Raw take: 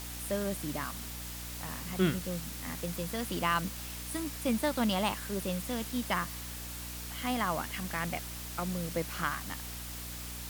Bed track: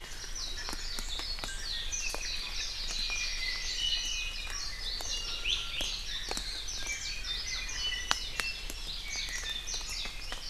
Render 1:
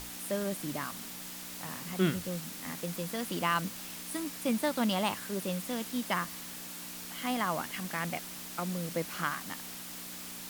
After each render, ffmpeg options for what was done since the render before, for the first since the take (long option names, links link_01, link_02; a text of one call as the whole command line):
ffmpeg -i in.wav -af "bandreject=frequency=60:width_type=h:width=6,bandreject=frequency=120:width_type=h:width=6" out.wav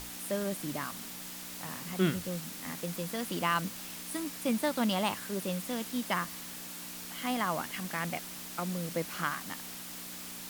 ffmpeg -i in.wav -af anull out.wav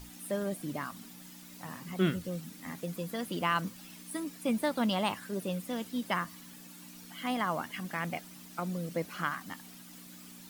ffmpeg -i in.wav -af "afftdn=noise_reduction=11:noise_floor=-44" out.wav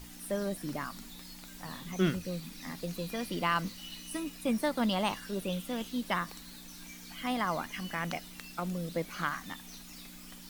ffmpeg -i in.wav -i bed.wav -filter_complex "[1:a]volume=-15.5dB[link_01];[0:a][link_01]amix=inputs=2:normalize=0" out.wav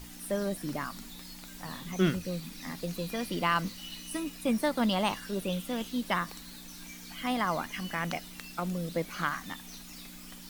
ffmpeg -i in.wav -af "volume=2dB" out.wav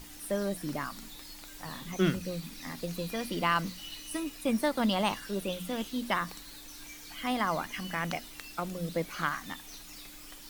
ffmpeg -i in.wav -af "bandreject=frequency=60:width_type=h:width=6,bandreject=frequency=120:width_type=h:width=6,bandreject=frequency=180:width_type=h:width=6,bandreject=frequency=240:width_type=h:width=6" out.wav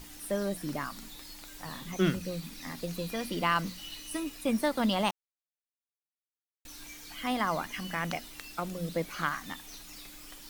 ffmpeg -i in.wav -filter_complex "[0:a]asplit=3[link_01][link_02][link_03];[link_01]atrim=end=5.11,asetpts=PTS-STARTPTS,afade=type=out:start_time=5.106:duration=0.004:curve=hsin[link_04];[link_02]atrim=start=5.11:end=6.65,asetpts=PTS-STARTPTS,volume=0[link_05];[link_03]atrim=start=6.65,asetpts=PTS-STARTPTS,afade=type=in:duration=0.004:curve=hsin[link_06];[link_04][link_05][link_06]concat=n=3:v=0:a=1" out.wav